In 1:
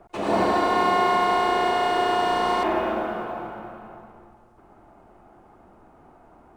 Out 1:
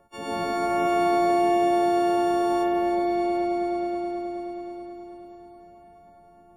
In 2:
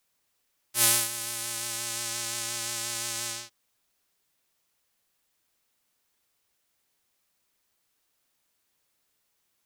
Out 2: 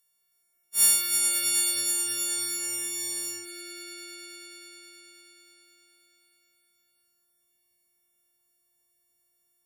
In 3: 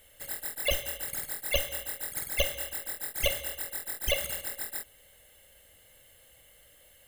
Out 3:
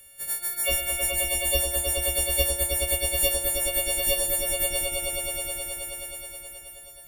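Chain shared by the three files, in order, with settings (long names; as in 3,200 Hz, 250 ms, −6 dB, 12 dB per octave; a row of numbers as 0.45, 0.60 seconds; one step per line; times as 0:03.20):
every partial snapped to a pitch grid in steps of 4 semitones
harmonic and percussive parts rebalanced harmonic −9 dB
on a send: echo that builds up and dies away 106 ms, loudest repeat 5, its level −4.5 dB
on the sum: loudness normalisation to −24 LKFS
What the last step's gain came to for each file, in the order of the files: −2.5, −2.0, +5.0 decibels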